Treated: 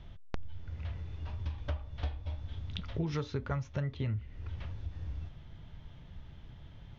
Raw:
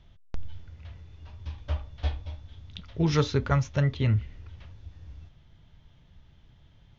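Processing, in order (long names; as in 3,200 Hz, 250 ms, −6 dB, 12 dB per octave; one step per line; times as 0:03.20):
high-shelf EQ 4,400 Hz −9.5 dB
downward compressor 5 to 1, threshold −40 dBFS, peak gain reduction 19.5 dB
level +6.5 dB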